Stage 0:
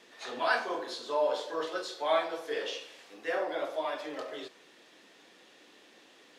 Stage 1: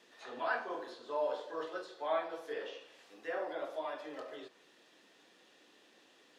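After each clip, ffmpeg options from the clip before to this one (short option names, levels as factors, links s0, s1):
-filter_complex "[0:a]bandreject=f=2200:w=18,acrossover=split=2600[s0][s1];[s1]acompressor=threshold=0.002:ratio=6[s2];[s0][s2]amix=inputs=2:normalize=0,volume=0.501"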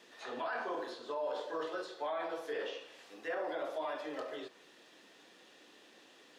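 -af "alimiter=level_in=2.99:limit=0.0631:level=0:latency=1:release=27,volume=0.335,volume=1.58"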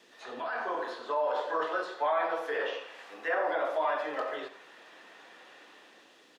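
-filter_complex "[0:a]acrossover=split=620|2300[s0][s1][s2];[s1]dynaudnorm=f=110:g=13:m=3.98[s3];[s0][s3][s2]amix=inputs=3:normalize=0,aecho=1:1:87:0.224"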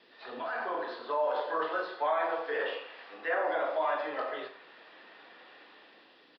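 -filter_complex "[0:a]asplit=2[s0][s1];[s1]adelay=38,volume=0.299[s2];[s0][s2]amix=inputs=2:normalize=0,aresample=11025,aresample=44100,volume=0.891"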